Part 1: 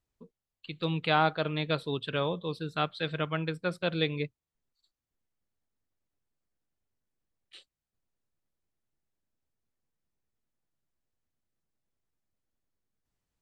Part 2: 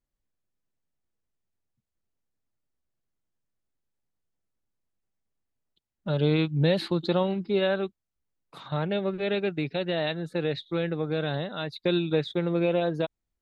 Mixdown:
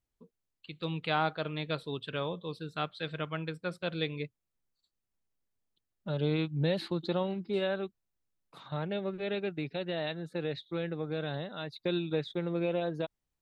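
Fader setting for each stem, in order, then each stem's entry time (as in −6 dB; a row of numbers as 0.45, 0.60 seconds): −4.5, −6.5 decibels; 0.00, 0.00 seconds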